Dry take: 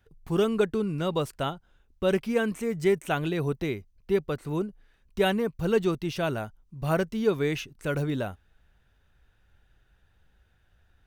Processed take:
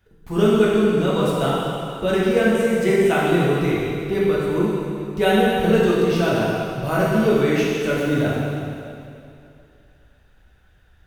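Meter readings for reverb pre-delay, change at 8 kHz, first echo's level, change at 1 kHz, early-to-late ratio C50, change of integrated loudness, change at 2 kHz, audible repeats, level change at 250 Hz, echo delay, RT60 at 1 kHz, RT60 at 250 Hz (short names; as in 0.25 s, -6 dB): 4 ms, +9.0 dB, none, +10.0 dB, -2.5 dB, +8.5 dB, +9.5 dB, none, +9.5 dB, none, 2.6 s, 2.6 s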